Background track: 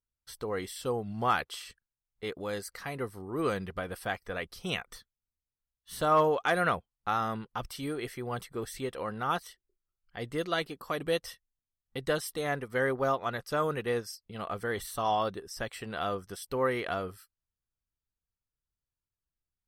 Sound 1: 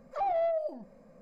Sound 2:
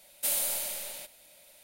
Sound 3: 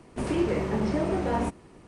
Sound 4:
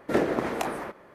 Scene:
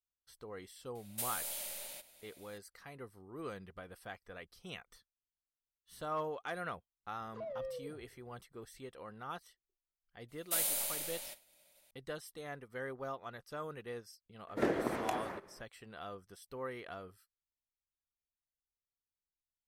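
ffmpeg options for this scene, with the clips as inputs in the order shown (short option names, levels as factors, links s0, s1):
-filter_complex "[2:a]asplit=2[s0][s1];[0:a]volume=0.211[s2];[s0]acompressor=threshold=0.0224:ratio=6:attack=36:release=218:knee=6:detection=peak[s3];[1:a]afreqshift=-140[s4];[s1]agate=range=0.0224:threshold=0.00251:ratio=3:release=100:detection=peak[s5];[4:a]highshelf=f=11000:g=-2.5[s6];[s3]atrim=end=1.63,asetpts=PTS-STARTPTS,volume=0.531,afade=t=in:d=0.004:c=hsin,afade=t=out:st=1.626:d=0.004:c=hsin,adelay=950[s7];[s4]atrim=end=1.21,asetpts=PTS-STARTPTS,volume=0.211,afade=t=in:d=0.004:c=hsin,afade=t=out:st=1.206:d=0.004:c=hsin,adelay=7200[s8];[s5]atrim=end=1.63,asetpts=PTS-STARTPTS,volume=0.596,afade=t=in:d=0.004:c=hsin,afade=t=out:st=1.626:d=0.004:c=hsin,adelay=10280[s9];[s6]atrim=end=1.14,asetpts=PTS-STARTPTS,volume=0.398,afade=t=in:d=0.004:c=hsin,afade=t=out:st=1.136:d=0.004:c=hsin,adelay=14480[s10];[s2][s7][s8][s9][s10]amix=inputs=5:normalize=0"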